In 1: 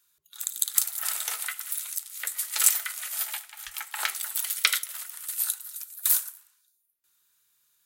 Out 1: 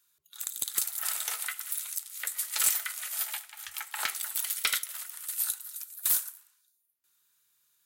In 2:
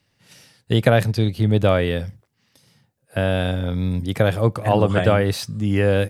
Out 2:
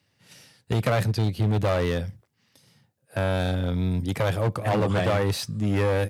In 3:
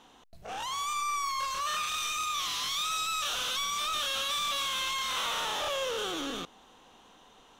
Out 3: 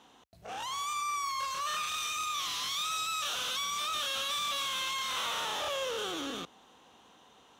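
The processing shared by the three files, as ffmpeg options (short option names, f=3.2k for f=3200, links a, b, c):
-af "volume=16.5dB,asoftclip=hard,volume=-16.5dB,highpass=f=58:w=0.5412,highpass=f=58:w=1.3066,volume=-2dB"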